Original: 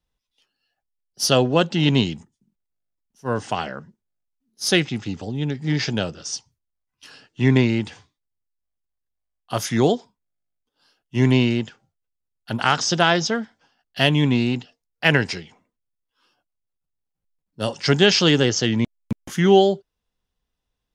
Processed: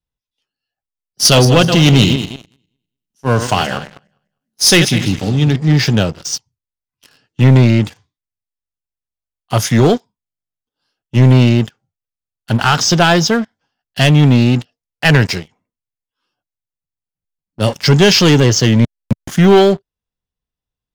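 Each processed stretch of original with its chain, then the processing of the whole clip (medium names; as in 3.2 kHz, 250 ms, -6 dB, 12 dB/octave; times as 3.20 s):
1.25–5.56 s: backward echo that repeats 101 ms, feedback 46%, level -10 dB + treble shelf 2.2 kHz +8 dB
whole clip: peaking EQ 110 Hz +6.5 dB 1.4 oct; waveshaping leveller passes 3; trim -2.5 dB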